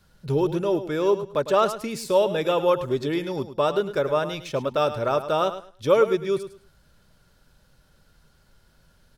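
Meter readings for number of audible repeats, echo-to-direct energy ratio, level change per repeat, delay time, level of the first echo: 2, −12.0 dB, −13.5 dB, 105 ms, −12.0 dB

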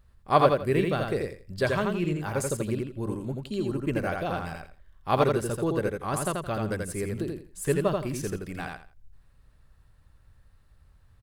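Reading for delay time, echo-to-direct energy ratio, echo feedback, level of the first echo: 84 ms, −3.5 dB, 23%, −3.5 dB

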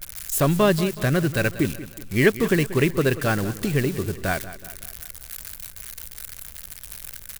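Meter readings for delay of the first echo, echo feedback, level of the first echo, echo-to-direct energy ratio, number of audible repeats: 186 ms, 49%, −15.0 dB, −14.0 dB, 4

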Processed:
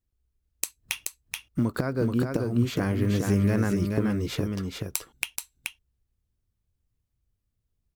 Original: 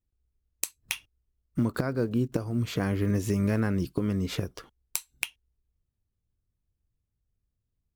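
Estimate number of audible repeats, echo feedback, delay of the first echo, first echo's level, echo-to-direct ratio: 1, repeats not evenly spaced, 429 ms, −4.0 dB, −4.0 dB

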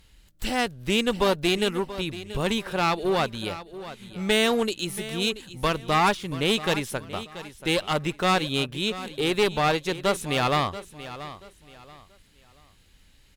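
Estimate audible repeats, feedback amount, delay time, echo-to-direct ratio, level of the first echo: 2, 29%, 682 ms, −14.0 dB, −14.5 dB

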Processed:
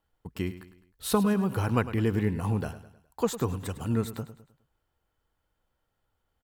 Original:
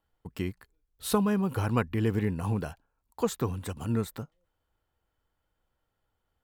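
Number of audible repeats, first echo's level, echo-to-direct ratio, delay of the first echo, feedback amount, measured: 3, −14.0 dB, −13.0 dB, 104 ms, 44%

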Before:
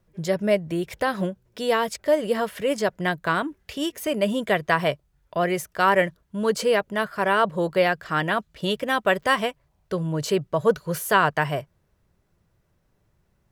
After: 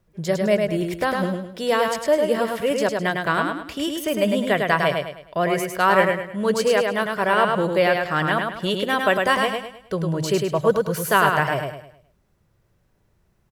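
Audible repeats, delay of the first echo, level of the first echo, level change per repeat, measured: 4, 104 ms, −4.0 dB, −8.5 dB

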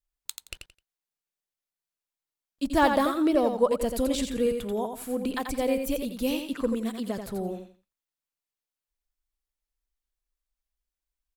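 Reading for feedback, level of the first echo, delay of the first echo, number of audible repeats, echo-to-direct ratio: 23%, −6.5 dB, 86 ms, 3, −6.5 dB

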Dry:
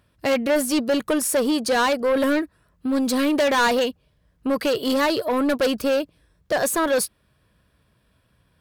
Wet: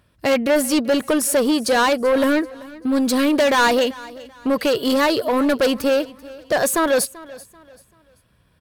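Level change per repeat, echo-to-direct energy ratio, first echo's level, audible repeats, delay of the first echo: −9.5 dB, −19.5 dB, −20.0 dB, 2, 387 ms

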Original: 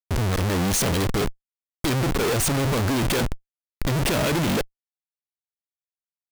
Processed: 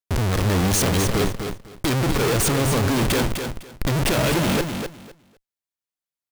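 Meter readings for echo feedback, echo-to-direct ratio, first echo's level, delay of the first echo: 19%, −7.0 dB, −7.0 dB, 253 ms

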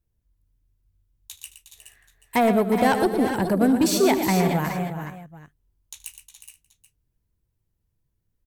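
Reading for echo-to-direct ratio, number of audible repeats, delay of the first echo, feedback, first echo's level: −4.0 dB, 8, 76 ms, repeats not evenly spaced, −18.0 dB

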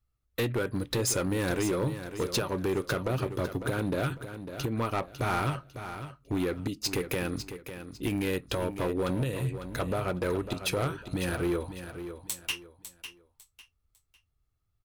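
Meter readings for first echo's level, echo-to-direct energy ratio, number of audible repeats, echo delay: −10.5 dB, −10.0 dB, 3, 551 ms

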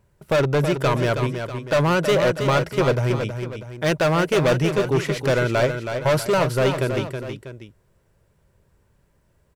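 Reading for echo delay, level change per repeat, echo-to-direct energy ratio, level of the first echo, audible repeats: 322 ms, −7.0 dB, −6.5 dB, −7.5 dB, 2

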